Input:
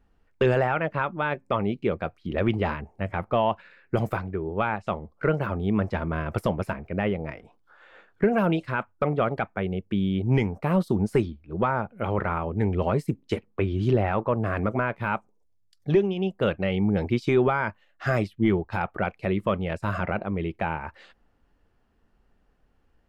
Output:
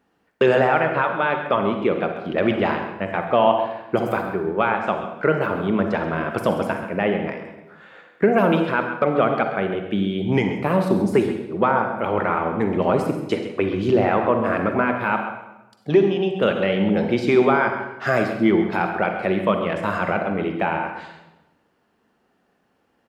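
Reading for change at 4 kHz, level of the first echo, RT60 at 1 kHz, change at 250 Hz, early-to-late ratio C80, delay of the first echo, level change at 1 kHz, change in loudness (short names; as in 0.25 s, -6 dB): +7.0 dB, -11.5 dB, 0.95 s, +5.0 dB, 7.0 dB, 0.133 s, +7.0 dB, +5.5 dB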